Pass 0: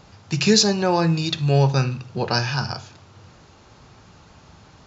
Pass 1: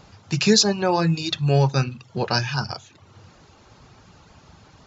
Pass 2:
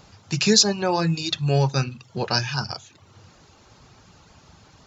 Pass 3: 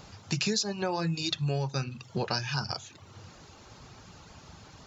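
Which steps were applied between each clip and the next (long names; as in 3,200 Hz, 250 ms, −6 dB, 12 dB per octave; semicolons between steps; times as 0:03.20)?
reverb reduction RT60 0.53 s
high-shelf EQ 4,800 Hz +6.5 dB; level −2 dB
downward compressor 6 to 1, threshold −28 dBFS, peak gain reduction 15.5 dB; level +1 dB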